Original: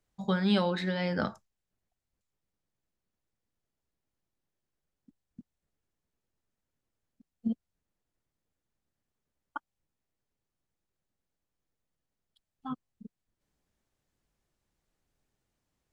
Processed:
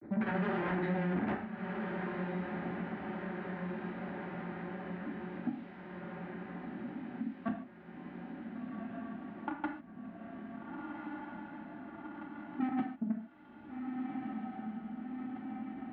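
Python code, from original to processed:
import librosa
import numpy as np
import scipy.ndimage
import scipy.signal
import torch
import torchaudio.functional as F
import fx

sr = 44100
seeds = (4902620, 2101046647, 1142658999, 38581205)

p1 = fx.wiener(x, sr, points=15)
p2 = fx.peak_eq(p1, sr, hz=300.0, db=14.0, octaves=0.91)
p3 = fx.level_steps(p2, sr, step_db=23)
p4 = p2 + (p3 * librosa.db_to_amplitude(0.5))
p5 = 10.0 ** (-22.5 / 20.0) * (np.abs((p4 / 10.0 ** (-22.5 / 20.0) + 3.0) % 4.0 - 2.0) - 1.0)
p6 = fx.granulator(p5, sr, seeds[0], grain_ms=100.0, per_s=20.0, spray_ms=100.0, spread_st=0)
p7 = 10.0 ** (-39.5 / 20.0) * np.tanh(p6 / 10.0 ** (-39.5 / 20.0))
p8 = fx.cabinet(p7, sr, low_hz=110.0, low_slope=12, high_hz=2200.0, hz=(220.0, 500.0, 1100.0), db=(6, -7, -8))
p9 = fx.echo_diffused(p8, sr, ms=1482, feedback_pct=56, wet_db=-10.0)
p10 = fx.rev_gated(p9, sr, seeds[1], gate_ms=170, shape='falling', drr_db=0.0)
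p11 = fx.band_squash(p10, sr, depth_pct=70)
y = p11 * librosa.db_to_amplitude(11.5)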